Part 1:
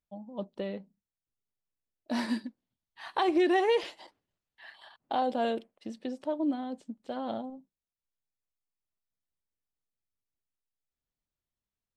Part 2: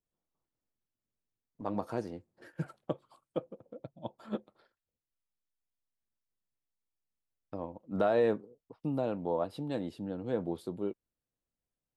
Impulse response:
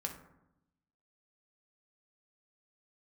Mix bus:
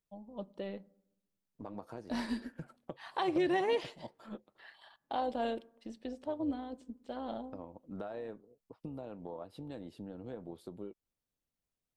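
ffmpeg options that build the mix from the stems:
-filter_complex "[0:a]volume=-5dB,asplit=2[link_01][link_02];[link_02]volume=-15.5dB[link_03];[1:a]acompressor=threshold=-41dB:ratio=4,volume=0dB[link_04];[2:a]atrim=start_sample=2205[link_05];[link_03][link_05]afir=irnorm=-1:irlink=0[link_06];[link_01][link_04][link_06]amix=inputs=3:normalize=0,tremolo=f=200:d=0.333"

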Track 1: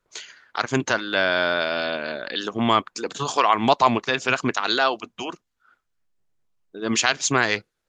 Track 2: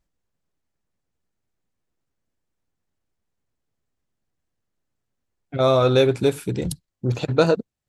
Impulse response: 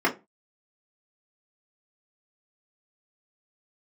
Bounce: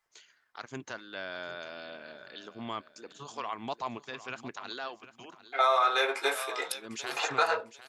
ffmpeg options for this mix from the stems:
-filter_complex "[0:a]volume=-18.5dB,asplit=2[link_01][link_02];[link_02]volume=-14.5dB[link_03];[1:a]highpass=frequency=820:width=0.5412,highpass=frequency=820:width=1.3066,volume=-3dB,asplit=3[link_04][link_05][link_06];[link_05]volume=-5dB[link_07];[link_06]volume=-10.5dB[link_08];[2:a]atrim=start_sample=2205[link_09];[link_07][link_09]afir=irnorm=-1:irlink=0[link_10];[link_03][link_08]amix=inputs=2:normalize=0,aecho=0:1:751|1502|2253|3004:1|0.24|0.0576|0.0138[link_11];[link_01][link_04][link_10][link_11]amix=inputs=4:normalize=0,alimiter=limit=-15dB:level=0:latency=1:release=244"

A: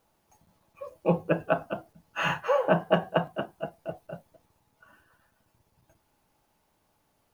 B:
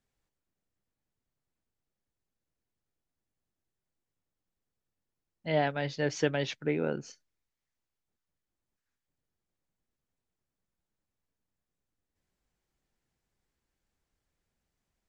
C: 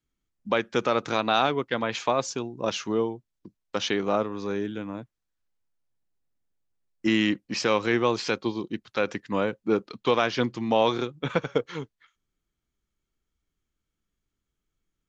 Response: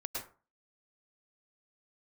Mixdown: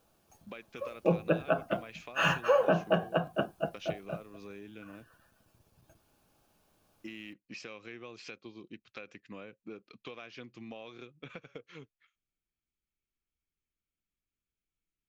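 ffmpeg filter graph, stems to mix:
-filter_complex "[0:a]bandreject=frequency=2000:width=6.8,volume=2dB[link_01];[2:a]equalizer=frequency=2500:width=3.8:gain=10,acompressor=threshold=-30dB:ratio=6,volume=-12.5dB[link_02];[link_01][link_02]amix=inputs=2:normalize=0,equalizer=frequency=910:width_type=o:width=0.24:gain=-9,alimiter=limit=-15dB:level=0:latency=1:release=201"

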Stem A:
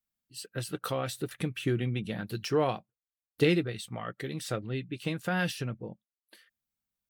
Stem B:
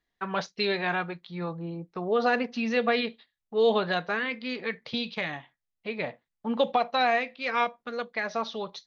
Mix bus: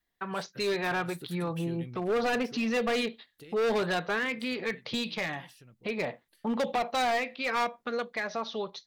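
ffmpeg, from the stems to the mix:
ffmpeg -i stem1.wav -i stem2.wav -filter_complex "[0:a]aemphasis=mode=production:type=cd,acompressor=threshold=-46dB:ratio=2,volume=-8.5dB,afade=type=out:start_time=2.27:duration=0.4:silence=0.281838[link_01];[1:a]adynamicequalizer=threshold=0.0112:dfrequency=390:dqfactor=5.1:tfrequency=390:tqfactor=5.1:attack=5:release=100:ratio=0.375:range=2:mode=boostabove:tftype=bell,volume=-1dB[link_02];[link_01][link_02]amix=inputs=2:normalize=0,dynaudnorm=framelen=110:gausssize=13:maxgain=6.5dB,asoftclip=type=hard:threshold=-19dB,alimiter=level_in=0.5dB:limit=-24dB:level=0:latency=1:release=111,volume=-0.5dB" out.wav

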